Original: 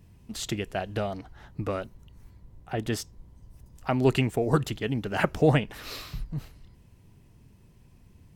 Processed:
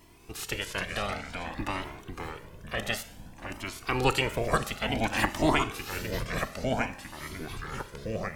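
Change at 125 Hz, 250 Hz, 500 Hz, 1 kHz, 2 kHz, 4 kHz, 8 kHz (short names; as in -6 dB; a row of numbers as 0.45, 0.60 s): -6.0, -3.5, -3.0, +3.0, +5.0, +4.0, +2.5 dB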